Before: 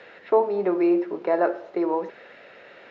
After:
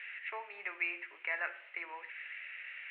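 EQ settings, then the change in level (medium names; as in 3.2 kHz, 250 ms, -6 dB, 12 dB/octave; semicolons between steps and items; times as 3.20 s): Butterworth band-pass 2.4 kHz, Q 2.5; distance through air 430 m; +13.5 dB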